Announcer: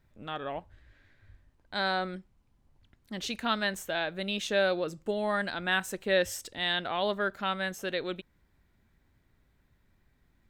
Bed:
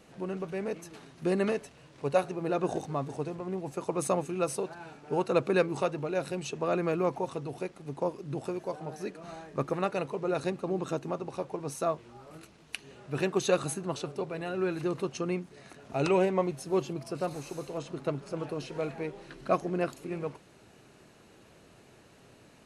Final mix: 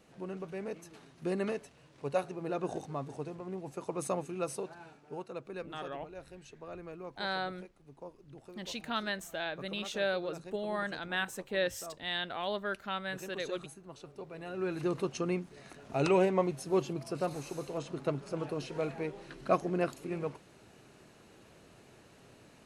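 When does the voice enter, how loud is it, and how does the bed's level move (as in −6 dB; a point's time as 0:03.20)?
5.45 s, −5.5 dB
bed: 0:04.81 −5.5 dB
0:05.36 −16.5 dB
0:13.85 −16.5 dB
0:14.88 −1 dB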